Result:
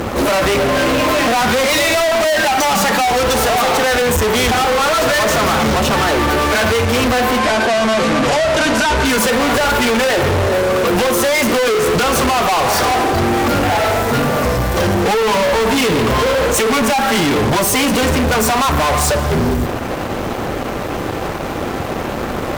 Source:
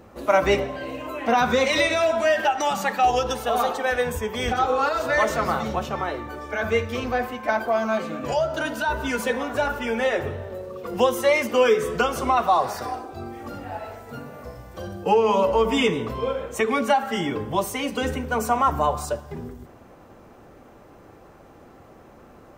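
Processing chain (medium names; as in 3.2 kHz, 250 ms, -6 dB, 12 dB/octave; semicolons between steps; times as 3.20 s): compression, threshold -27 dBFS, peak gain reduction 13 dB; fuzz box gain 45 dB, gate -53 dBFS; 7.38–9.05 s: low-pass 9.2 kHz 12 dB/octave; bit crusher 9-bit; attacks held to a fixed rise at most 120 dB/s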